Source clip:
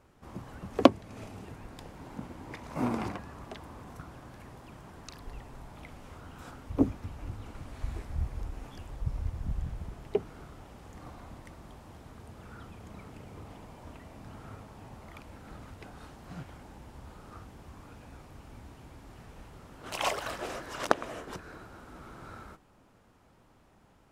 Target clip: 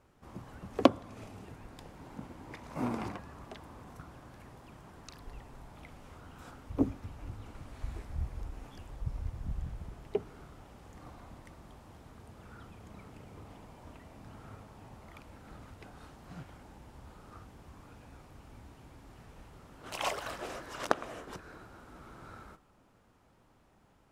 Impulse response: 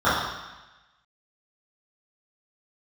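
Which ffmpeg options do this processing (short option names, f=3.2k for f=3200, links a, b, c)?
-filter_complex "[0:a]asplit=2[a][b];[1:a]atrim=start_sample=2205[c];[b][c]afir=irnorm=-1:irlink=0,volume=-42dB[d];[a][d]amix=inputs=2:normalize=0,volume=-3.5dB"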